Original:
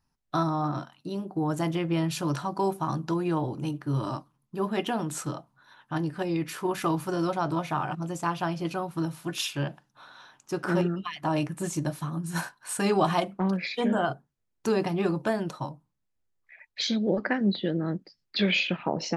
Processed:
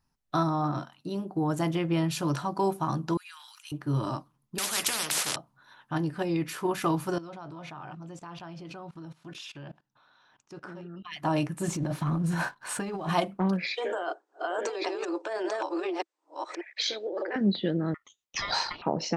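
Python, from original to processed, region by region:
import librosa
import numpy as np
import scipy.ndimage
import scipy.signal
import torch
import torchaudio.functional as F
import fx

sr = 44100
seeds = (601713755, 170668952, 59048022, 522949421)

y = fx.chain(x, sr, fx.bessel_highpass(hz=2500.0, order=8),
    fx.sustainer(db_per_s=27.0), at=(3.17, 3.72))
y = fx.chain(y, sr, fx.weighting(curve='ITU-R 468'),
    fx.spectral_comp(ratio=10.0), at=(4.58, 5.36))
y = fx.chain(y, sr, fx.level_steps(step_db=21),
    fx.lowpass(hz=5900.0, slope=12), at=(7.18, 11.12))
y = fx.chain(y, sr, fx.lowpass(hz=2400.0, slope=6),
    fx.over_compress(threshold_db=-33.0, ratio=-1.0),
    fx.leveller(passes=1), at=(11.68, 13.09))
y = fx.chain(y, sr, fx.reverse_delay(ms=586, wet_db=-1.5),
    fx.cheby1_bandpass(low_hz=330.0, high_hz=8500.0, order=5),
    fx.over_compress(threshold_db=-31.0, ratio=-1.0), at=(13.68, 17.36))
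y = fx.chain(y, sr, fx.highpass(hz=480.0, slope=12),
    fx.ring_mod(carrier_hz=1600.0), at=(17.94, 18.82))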